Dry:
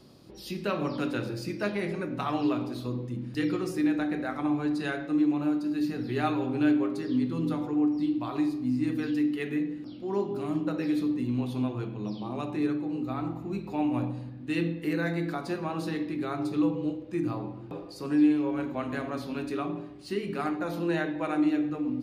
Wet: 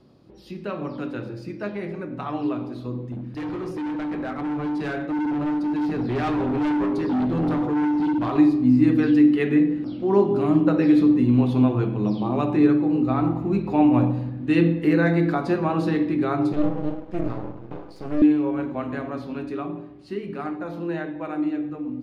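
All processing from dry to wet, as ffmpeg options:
-filter_complex "[0:a]asettb=1/sr,asplit=3[a][b][c];[a]atrim=end=3.124[d];[b]atrim=start=3.12:end=8.36,asetpts=PTS-STARTPTS,afade=t=in:d=0.004:c=qsin,afade=t=out:st=5.236:d=0.004:c=qsin,bandreject=f=7.6k:w=6.7,asoftclip=type=hard:threshold=-31dB[e];[c]atrim=start=8.356[f];[d][e]acrossfade=d=0.004:c1=hsin:c2=qsin[g];[g][f]acrossfade=d=0.004:c1=qsin:c2=hsin,asettb=1/sr,asplit=3[h][i][j];[h]atrim=end=16.534[k];[i]atrim=start=16.53:end=18.22,asetpts=PTS-STARTPTS,afade=t=in:d=0.004:c=qsin,afade=t=out:st=1.686:d=0.004:c=qsin,acrossover=split=380|3000[l][m][n];[m]acompressor=threshold=-36dB:ratio=6:attack=3.2:release=140:knee=2.83:detection=peak[o];[l][o][n]amix=inputs=3:normalize=0,aeval=exprs='max(val(0),0)':c=same[p];[j]atrim=start=18.216[q];[k][p]acrossfade=d=0.004:c1=hsin:c2=qsin[r];[r][q]acrossfade=d=0.004:c1=qsin:c2=hsin,lowpass=f=1.7k:p=1,dynaudnorm=f=310:g=31:m=11.5dB"

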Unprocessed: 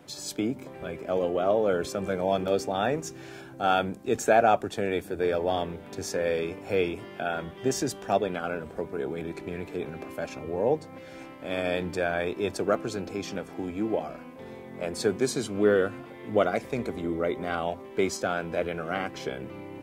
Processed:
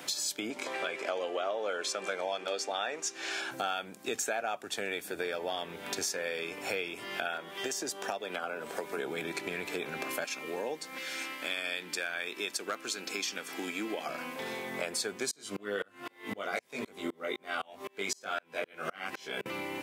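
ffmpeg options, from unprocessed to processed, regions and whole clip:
-filter_complex "[0:a]asettb=1/sr,asplit=3[a][b][c];[a]atrim=end=0.504[d];[b]atrim=start=0.5:end=3.51,asetpts=PTS-STARTPTS,afade=t=in:d=0.004:c=qsin,afade=t=out:st=3.006:d=0.004:c=qsin,acontrast=38,highpass=350,lowpass=7.4k[e];[c]atrim=start=3.506[f];[d][e]acrossfade=d=0.004:c1=hsin:c2=qsin[g];[g][f]acrossfade=d=0.004:c1=qsin:c2=hsin,asettb=1/sr,asplit=3[h][i][j];[h]atrim=end=7.374[k];[i]atrim=start=7.37:end=8.97,asetpts=PTS-STARTPTS,afade=t=in:d=0.004:c=qsin,afade=t=out:st=1.596:d=0.004:c=qsin,acrossover=split=210|1200[l][m][n];[l]acompressor=threshold=-48dB:ratio=4[o];[m]acompressor=threshold=-31dB:ratio=4[p];[n]acompressor=threshold=-48dB:ratio=4[q];[o][p][q]amix=inputs=3:normalize=0,bass=f=250:g=-4,treble=f=4k:g=2[r];[j]atrim=start=8.966[s];[k][r]acrossfade=d=0.004:c1=hsin:c2=qsin[t];[t][s]acrossfade=d=0.004:c1=qsin:c2=hsin,asettb=1/sr,asplit=3[u][v][w];[u]atrim=end=10.244[x];[v]atrim=start=10.24:end=14.06,asetpts=PTS-STARTPTS,afade=t=in:d=0.004:c=qsin,afade=t=out:st=3.816:d=0.004:c=qsin,highpass=260,equalizer=f=650:t=o:w=1.6:g=-8.5,asoftclip=type=hard:threshold=-19.5dB[y];[w]atrim=start=14.056[z];[x][y]acrossfade=d=0.004:c1=hsin:c2=qsin[aa];[aa][z]acrossfade=d=0.004:c1=qsin:c2=hsin,asettb=1/sr,asplit=3[ab][ac][ad];[ab]atrim=end=15.314[ae];[ac]atrim=start=15.31:end=19.46,asetpts=PTS-STARTPTS,afade=t=in:d=0.004:c=qsin,afade=t=out:st=4.146:d=0.004:c=qsin,asplit=2[af][ag];[ag]adelay=20,volume=-2dB[ah];[af][ah]amix=inputs=2:normalize=0,atrim=end_sample=183015,aeval=exprs='val(0)*pow(10,-34*if(lt(mod(-3.9*n/s,1),2*abs(-3.9)/1000),1-mod(-3.9*n/s,1)/(2*abs(-3.9)/1000),(mod(-3.9*n/s,1)-2*abs(-3.9)/1000)/(1-2*abs(-3.9)/1000))/20)':c=same[ai];[ad]atrim=start=19.456[aj];[ae][ai]acrossfade=d=0.004:c1=hsin:c2=qsin[ak];[ak][aj]acrossfade=d=0.004:c1=qsin:c2=hsin,highpass=160,tiltshelf=f=970:g=-8.5,acompressor=threshold=-41dB:ratio=6,volume=8.5dB"

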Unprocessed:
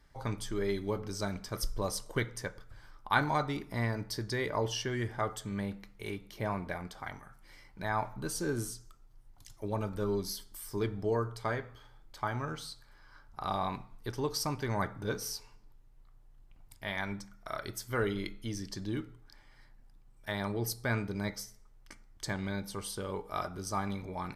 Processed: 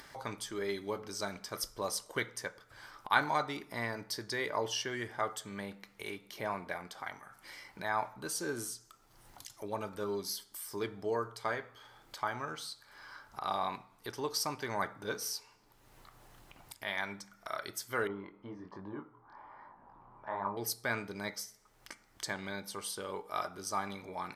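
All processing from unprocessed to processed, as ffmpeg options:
-filter_complex "[0:a]asettb=1/sr,asplit=3[a][b][c];[a]atrim=end=18.074[d];[b]atrim=start=18.07:end=20.57,asetpts=PTS-STARTPTS,afade=t=in:d=0.004:c=qsin,afade=t=out:st=2.496:d=0.004:c=qsin,lowpass=f=1k:t=q:w=4.6,flanger=delay=20:depth=4.6:speed=1.2[e];[c]atrim=start=20.566[f];[d][e]acrossfade=d=0.004:c1=hsin:c2=qsin[g];[g][f]acrossfade=d=0.004:c1=qsin:c2=hsin,highpass=f=530:p=1,acompressor=mode=upward:threshold=-42dB:ratio=2.5,volume=1dB"

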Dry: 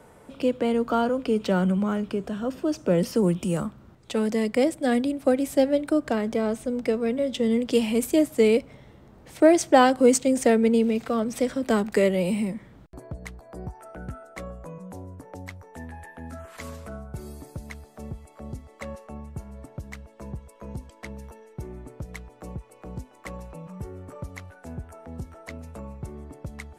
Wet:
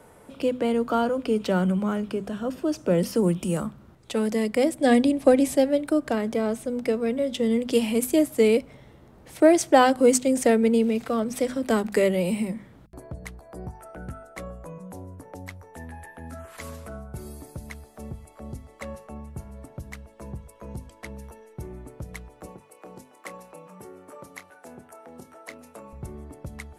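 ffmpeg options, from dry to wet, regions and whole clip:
-filter_complex "[0:a]asettb=1/sr,asplit=3[a][b][c];[a]atrim=end=4.794[d];[b]atrim=start=4.79:end=5.56,asetpts=PTS-STARTPTS,afade=t=in:d=0.004:c=qsin,afade=t=out:st=0.766:d=0.004:c=qsin,lowpass=9.8k,bandreject=f=1.4k:w=5.4,acontrast=25[e];[c]atrim=start=5.556[f];[d][e]acrossfade=d=0.004:c1=hsin:c2=qsin[g];[g][f]acrossfade=d=0.004:c1=qsin:c2=hsin,asettb=1/sr,asplit=3[h][i][j];[h]atrim=end=22.464[k];[i]atrim=start=22.46:end=25.93,asetpts=PTS-STARTPTS,afade=t=in:d=0.004:c=qsin,afade=t=out:st=3.466:d=0.004:c=qsin,highpass=300,acompressor=mode=upward:threshold=-58dB:ratio=2.5:attack=3.2:release=140:knee=2.83:detection=peak,asplit=2[l][m];[m]adelay=28,volume=-12dB[n];[l][n]amix=inputs=2:normalize=0,atrim=end_sample=153027[o];[j]atrim=start=25.926[p];[k][o]acrossfade=d=0.004:c1=hsin:c2=qsin[q];[q][p]acrossfade=d=0.004:c1=qsin:c2=hsin,equalizer=f=11k:w=2.6:g=7,bandreject=f=50:t=h:w=6,bandreject=f=100:t=h:w=6,bandreject=f=150:t=h:w=6,bandreject=f=200:t=h:w=6,bandreject=f=250:t=h:w=6"

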